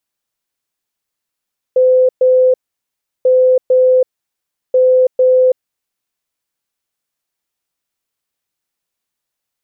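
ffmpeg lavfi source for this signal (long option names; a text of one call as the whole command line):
ffmpeg -f lavfi -i "aevalsrc='0.473*sin(2*PI*511*t)*clip(min(mod(mod(t,1.49),0.45),0.33-mod(mod(t,1.49),0.45))/0.005,0,1)*lt(mod(t,1.49),0.9)':duration=4.47:sample_rate=44100" out.wav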